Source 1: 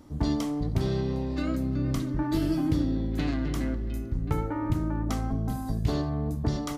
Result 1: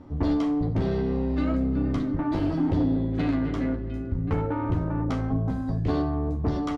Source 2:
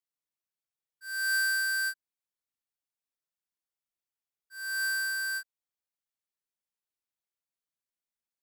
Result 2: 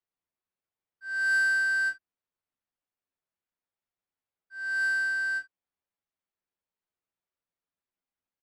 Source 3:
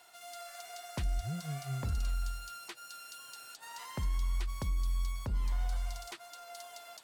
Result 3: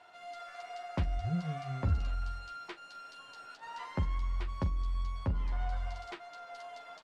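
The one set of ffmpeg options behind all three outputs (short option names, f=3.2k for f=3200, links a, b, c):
-af "aeval=exprs='0.211*sin(PI/2*2*val(0)/0.211)':c=same,adynamicsmooth=sensitivity=0.5:basefreq=2.6k,aecho=1:1:11|44:0.596|0.188,volume=-6dB"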